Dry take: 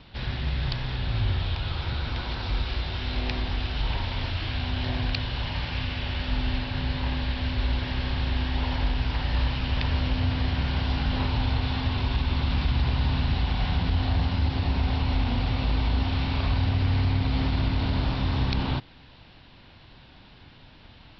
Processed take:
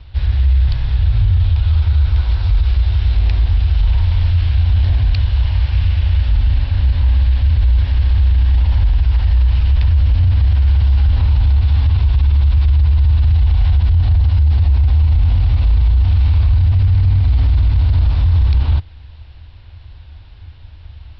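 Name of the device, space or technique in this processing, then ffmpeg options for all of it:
car stereo with a boomy subwoofer: -af "lowshelf=f=120:t=q:w=3:g=14,alimiter=limit=-7dB:level=0:latency=1:release=18"

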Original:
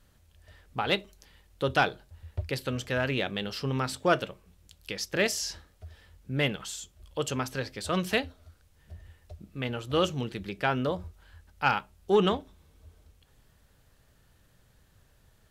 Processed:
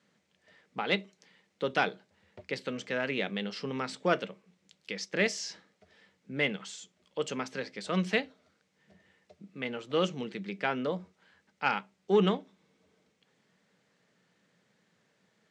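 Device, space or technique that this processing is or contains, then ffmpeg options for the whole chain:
television speaker: -af "highpass=f=170:w=0.5412,highpass=f=170:w=1.3066,equalizer=f=190:t=q:w=4:g=8,equalizer=f=460:t=q:w=4:g=4,equalizer=f=2.1k:t=q:w=4:g=7,lowpass=f=7.4k:w=0.5412,lowpass=f=7.4k:w=1.3066,volume=-4.5dB"

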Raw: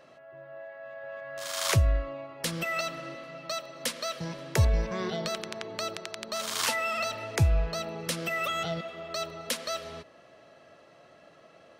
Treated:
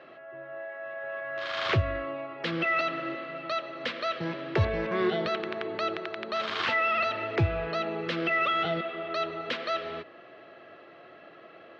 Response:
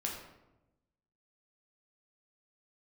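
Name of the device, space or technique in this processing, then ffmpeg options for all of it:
overdrive pedal into a guitar cabinet: -filter_complex "[0:a]asplit=2[a][b];[b]highpass=f=720:p=1,volume=16dB,asoftclip=type=tanh:threshold=-12.5dB[c];[a][c]amix=inputs=2:normalize=0,lowpass=f=1.8k:p=1,volume=-6dB,highpass=94,equalizer=f=98:t=q:w=4:g=7,equalizer=f=350:t=q:w=4:g=7,equalizer=f=580:t=q:w=4:g=-5,equalizer=f=940:t=q:w=4:g=-7,lowpass=f=3.8k:w=0.5412,lowpass=f=3.8k:w=1.3066"

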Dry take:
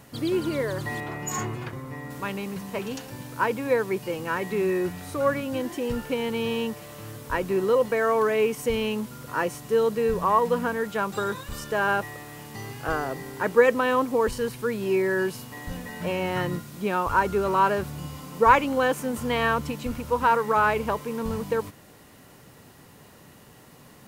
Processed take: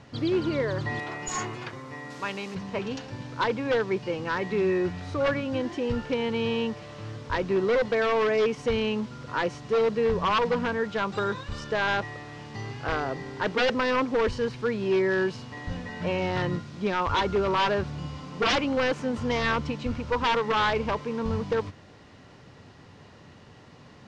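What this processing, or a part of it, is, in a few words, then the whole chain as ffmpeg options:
synthesiser wavefolder: -filter_complex "[0:a]asettb=1/sr,asplit=3[a][b][c];[a]atrim=end=0.994[d];[b]atrim=start=0.99:end=2.55,asetpts=PTS-STARTPTS,afade=t=in:d=0.004:c=qsin,afade=t=out:st=1.556:d=0.004:c=qsin,aemphasis=mode=production:type=bsi[e];[c]atrim=start=2.546[f];[d][e]acrossfade=d=0.004:c1=hsin:c2=qsin[g];[g][f]acrossfade=d=0.004:c1=qsin:c2=hsin,equalizer=f=94:w=3:g=6,aeval=exprs='0.126*(abs(mod(val(0)/0.126+3,4)-2)-1)':c=same,lowpass=f=5.6k:w=0.5412,lowpass=f=5.6k:w=1.3066"

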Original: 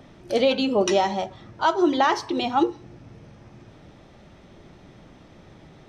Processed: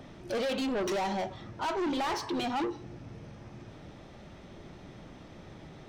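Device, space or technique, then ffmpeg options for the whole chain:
saturation between pre-emphasis and de-emphasis: -af "highshelf=f=5.9k:g=11.5,asoftclip=type=tanh:threshold=-28.5dB,highshelf=f=5.9k:g=-11.5"

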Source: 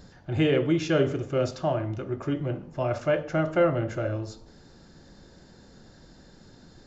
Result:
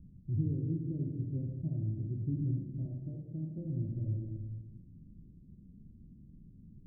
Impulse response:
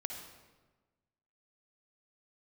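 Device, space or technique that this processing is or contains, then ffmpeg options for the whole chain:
club heard from the street: -filter_complex "[0:a]asettb=1/sr,asplit=3[a][b][c];[a]atrim=end=2.854[d];[b]atrim=start=2.85:end=3.58,asetpts=PTS-STARTPTS,afade=t=in:d=0.004:c=qsin,afade=t=out:st=0.726:d=0.004:c=qsin,highpass=170[e];[c]atrim=start=3.576[f];[d][e]acrossfade=d=0.004:c1=hsin:c2=qsin[g];[g][f]acrossfade=d=0.004:c1=qsin:c2=hsin,alimiter=limit=-17.5dB:level=0:latency=1:release=262,lowpass=f=230:w=0.5412,lowpass=f=230:w=1.3066[h];[1:a]atrim=start_sample=2205[i];[h][i]afir=irnorm=-1:irlink=0"

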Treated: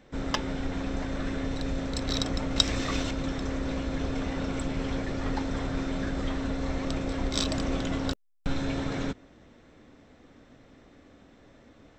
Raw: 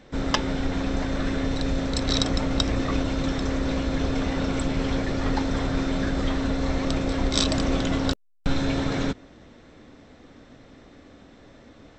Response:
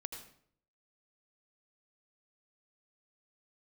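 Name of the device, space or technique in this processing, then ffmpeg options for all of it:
exciter from parts: -filter_complex "[0:a]asettb=1/sr,asplit=3[a][b][c];[a]atrim=end=2.564[d];[b]atrim=start=2.56:end=3.11,asetpts=PTS-STARTPTS,afade=t=in:d=0.004:c=qsin,afade=t=out:st=0.546:d=0.004:c=qsin,highshelf=f=2.1k:g=11.5[e];[c]atrim=start=3.106[f];[d][e]acrossfade=d=0.004:c1=hsin:c2=qsin[g];[g][f]acrossfade=d=0.004:c1=qsin:c2=hsin,asplit=2[h][i];[i]highpass=f=3.5k:p=1,asoftclip=type=tanh:threshold=-31dB,highpass=f=3.3k:w=0.5412,highpass=f=3.3k:w=1.3066,volume=-9.5dB[j];[h][j]amix=inputs=2:normalize=0,volume=-5.5dB"

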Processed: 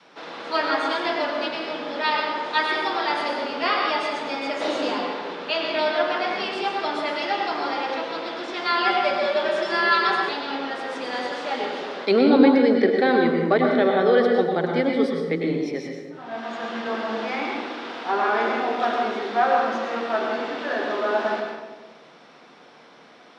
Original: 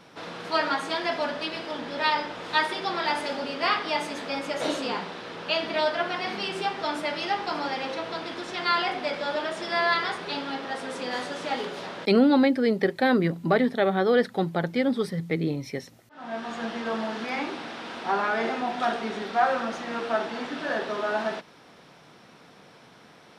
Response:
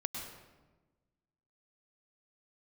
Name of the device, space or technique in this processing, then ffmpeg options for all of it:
supermarket ceiling speaker: -filter_complex "[0:a]adynamicequalizer=threshold=0.0224:dfrequency=380:dqfactor=1.6:tfrequency=380:tqfactor=1.6:attack=5:release=100:ratio=0.375:range=2:mode=boostabove:tftype=bell,highpass=280,lowpass=5.7k[a];[1:a]atrim=start_sample=2205[b];[a][b]afir=irnorm=-1:irlink=0,asettb=1/sr,asplit=3[c][d][e];[c]atrim=end=8.854[f];[d]atrim=start=8.85:end=10.29,asetpts=PTS-STARTPTS,afade=t=in:d=0.004:c=qsin,afade=t=out:st=1.436:d=0.004:c=qsin,aecho=1:1:5.2:0.81,atrim=end_sample=63504[g];[e]atrim=start=10.286[h];[f][g]acrossfade=d=0.004:c1=hsin:c2=qsin[i];[i][h]acrossfade=d=0.004:c1=qsin:c2=hsin,volume=2dB"

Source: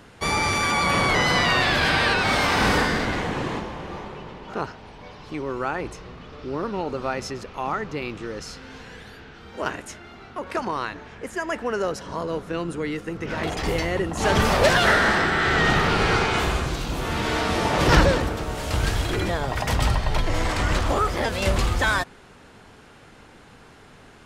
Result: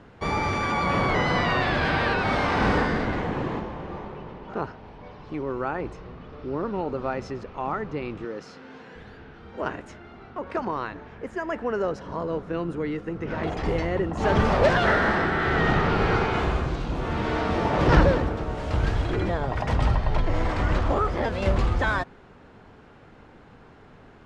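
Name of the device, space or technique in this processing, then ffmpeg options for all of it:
through cloth: -filter_complex "[0:a]lowpass=6.6k,highshelf=f=2.4k:g=-13.5,asettb=1/sr,asplit=3[a][b][c];[a]atrim=end=8.254[d];[b]atrim=start=8.25:end=8.96,asetpts=PTS-STARTPTS,afade=t=in:d=0.004:c=qsin,afade=t=out:st=0.706:d=0.004:c=qsin,highpass=190[e];[c]atrim=start=8.956[f];[d][e]acrossfade=d=0.004:c1=hsin:c2=qsin[g];[g][f]acrossfade=d=0.004:c1=qsin:c2=hsin"

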